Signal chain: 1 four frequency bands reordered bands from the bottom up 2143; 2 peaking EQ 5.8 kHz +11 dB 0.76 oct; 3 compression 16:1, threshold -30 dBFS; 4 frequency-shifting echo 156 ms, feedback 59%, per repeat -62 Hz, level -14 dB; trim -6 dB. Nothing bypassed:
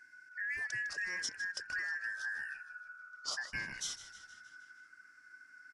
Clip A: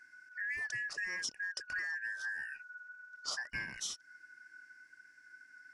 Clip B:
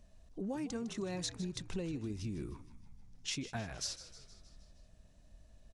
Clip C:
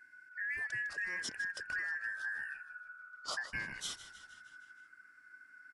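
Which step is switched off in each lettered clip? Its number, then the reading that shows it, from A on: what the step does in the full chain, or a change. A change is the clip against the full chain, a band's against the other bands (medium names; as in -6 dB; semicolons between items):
4, echo-to-direct -12.0 dB to none; 1, 2 kHz band -25.5 dB; 2, 8 kHz band -5.5 dB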